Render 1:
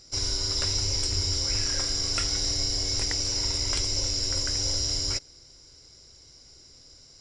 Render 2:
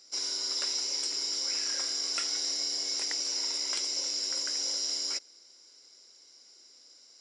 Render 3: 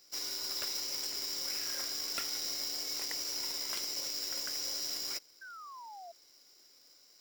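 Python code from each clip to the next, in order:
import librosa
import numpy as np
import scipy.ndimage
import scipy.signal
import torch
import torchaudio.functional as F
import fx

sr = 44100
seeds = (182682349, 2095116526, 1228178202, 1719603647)

y1 = scipy.signal.sosfilt(scipy.signal.butter(4, 230.0, 'highpass', fs=sr, output='sos'), x)
y1 = fx.low_shelf(y1, sr, hz=470.0, db=-9.5)
y1 = y1 * 10.0 ** (-3.5 / 20.0)
y2 = fx.halfwave_hold(y1, sr)
y2 = fx.spec_paint(y2, sr, seeds[0], shape='fall', start_s=5.41, length_s=0.71, low_hz=660.0, high_hz=1600.0, level_db=-40.0)
y2 = y2 * 10.0 ** (-8.0 / 20.0)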